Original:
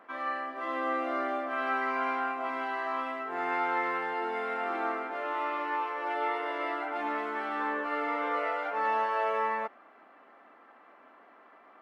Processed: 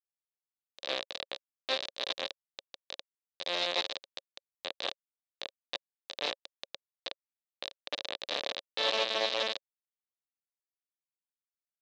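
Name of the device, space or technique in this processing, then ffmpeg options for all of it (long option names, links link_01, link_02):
hand-held game console: -af "acrusher=bits=3:mix=0:aa=0.000001,highpass=430,equalizer=frequency=550:width_type=q:width=4:gain=9,equalizer=frequency=920:width_type=q:width=4:gain=-6,equalizer=frequency=1400:width_type=q:width=4:gain=-10,equalizer=frequency=2100:width_type=q:width=4:gain=-4,equalizer=frequency=3800:width_type=q:width=4:gain=9,lowpass=frequency=4800:width=0.5412,lowpass=frequency=4800:width=1.3066"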